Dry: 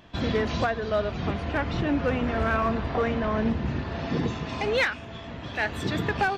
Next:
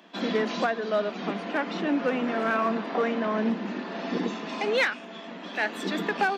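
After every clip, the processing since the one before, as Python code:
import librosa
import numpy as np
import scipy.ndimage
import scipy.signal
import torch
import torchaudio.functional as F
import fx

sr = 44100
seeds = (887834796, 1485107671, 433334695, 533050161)

y = scipy.signal.sosfilt(scipy.signal.butter(16, 180.0, 'highpass', fs=sr, output='sos'), x)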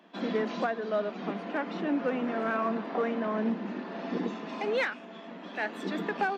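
y = fx.high_shelf(x, sr, hz=2500.0, db=-8.5)
y = F.gain(torch.from_numpy(y), -3.0).numpy()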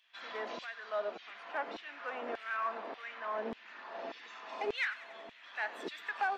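y = fx.echo_wet_highpass(x, sr, ms=94, feedback_pct=73, hz=1800.0, wet_db=-14)
y = fx.filter_lfo_highpass(y, sr, shape='saw_down', hz=1.7, low_hz=410.0, high_hz=3000.0, q=1.4)
y = F.gain(torch.from_numpy(y), -5.0).numpy()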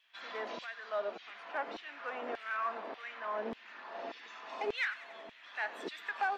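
y = fx.wow_flutter(x, sr, seeds[0], rate_hz=2.1, depth_cents=27.0)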